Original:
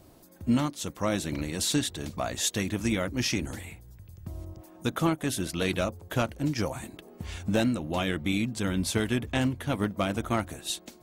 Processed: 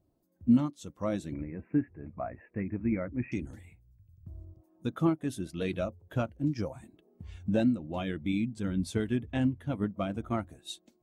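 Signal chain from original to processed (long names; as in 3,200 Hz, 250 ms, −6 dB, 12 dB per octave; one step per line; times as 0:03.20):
0:01.33–0:03.32: Butterworth low-pass 2,500 Hz 96 dB per octave
every bin expanded away from the loudest bin 1.5 to 1
level +1.5 dB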